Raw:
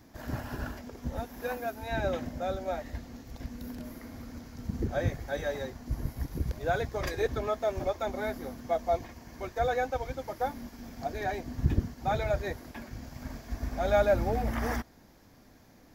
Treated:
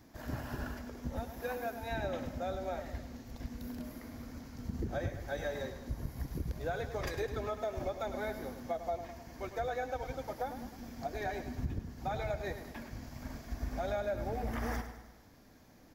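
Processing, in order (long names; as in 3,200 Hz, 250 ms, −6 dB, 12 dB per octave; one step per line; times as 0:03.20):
downward compressor 10 to 1, threshold −29 dBFS, peak gain reduction 11.5 dB
repeating echo 103 ms, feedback 52%, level −10.5 dB
level −3 dB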